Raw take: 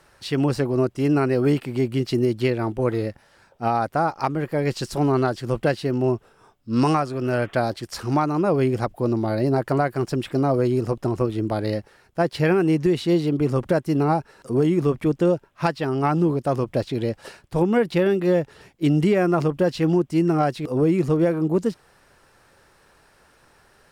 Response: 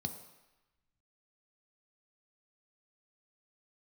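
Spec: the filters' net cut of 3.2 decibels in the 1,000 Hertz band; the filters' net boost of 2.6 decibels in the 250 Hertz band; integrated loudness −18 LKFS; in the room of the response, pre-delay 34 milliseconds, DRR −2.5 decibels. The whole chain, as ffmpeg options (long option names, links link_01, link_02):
-filter_complex "[0:a]equalizer=frequency=250:width_type=o:gain=4,equalizer=frequency=1000:width_type=o:gain=-5,asplit=2[link_01][link_02];[1:a]atrim=start_sample=2205,adelay=34[link_03];[link_02][link_03]afir=irnorm=-1:irlink=0,volume=3dB[link_04];[link_01][link_04]amix=inputs=2:normalize=0,volume=-7.5dB"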